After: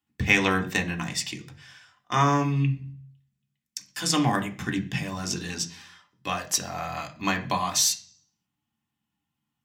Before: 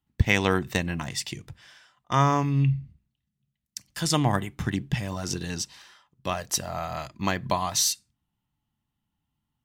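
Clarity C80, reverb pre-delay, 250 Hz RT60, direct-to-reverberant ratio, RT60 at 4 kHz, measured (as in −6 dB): 19.5 dB, 3 ms, 0.65 s, 3.0 dB, 0.50 s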